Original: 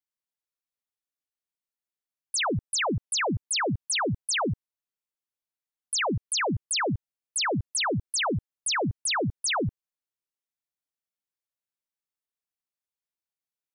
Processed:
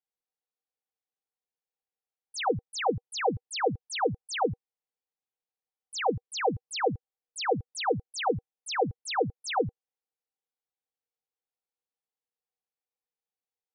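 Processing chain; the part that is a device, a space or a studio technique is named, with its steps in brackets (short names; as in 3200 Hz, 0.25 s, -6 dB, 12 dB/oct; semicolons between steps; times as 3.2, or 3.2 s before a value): inside a cardboard box (LPF 5800 Hz 12 dB/oct; small resonant body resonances 480/770 Hz, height 16 dB, ringing for 50 ms); gain -6.5 dB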